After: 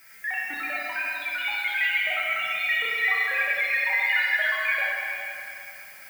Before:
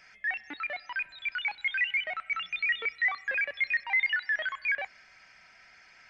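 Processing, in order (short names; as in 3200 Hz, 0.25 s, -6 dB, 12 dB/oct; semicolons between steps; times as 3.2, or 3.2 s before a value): bin magnitudes rounded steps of 15 dB; added noise violet -55 dBFS; Schroeder reverb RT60 2.9 s, combs from 28 ms, DRR -5 dB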